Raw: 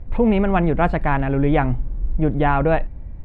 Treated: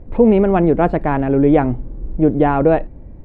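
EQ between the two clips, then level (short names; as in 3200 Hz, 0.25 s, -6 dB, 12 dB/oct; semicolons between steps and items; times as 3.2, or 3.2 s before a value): bell 370 Hz +13 dB 2.2 oct; -4.5 dB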